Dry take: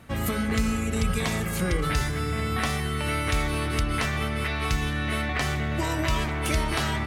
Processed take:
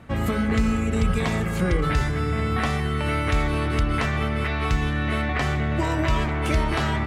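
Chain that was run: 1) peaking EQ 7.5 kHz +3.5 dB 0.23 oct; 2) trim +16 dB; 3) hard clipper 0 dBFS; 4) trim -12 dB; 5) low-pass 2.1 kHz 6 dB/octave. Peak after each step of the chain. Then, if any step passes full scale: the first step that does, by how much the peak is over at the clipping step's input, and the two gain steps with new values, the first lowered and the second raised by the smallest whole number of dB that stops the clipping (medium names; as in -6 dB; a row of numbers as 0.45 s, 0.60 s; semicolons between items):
-12.5 dBFS, +3.5 dBFS, 0.0 dBFS, -12.0 dBFS, -12.0 dBFS; step 2, 3.5 dB; step 2 +12 dB, step 4 -8 dB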